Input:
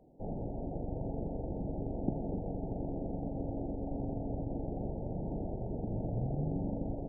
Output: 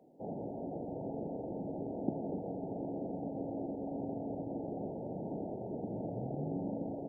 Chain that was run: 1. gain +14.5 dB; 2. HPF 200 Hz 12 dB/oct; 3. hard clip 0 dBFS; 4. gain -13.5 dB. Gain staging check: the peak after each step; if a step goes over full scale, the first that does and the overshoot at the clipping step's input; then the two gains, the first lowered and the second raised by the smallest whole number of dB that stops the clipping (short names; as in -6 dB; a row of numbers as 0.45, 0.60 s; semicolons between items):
-4.0, -5.0, -5.0, -18.5 dBFS; no overload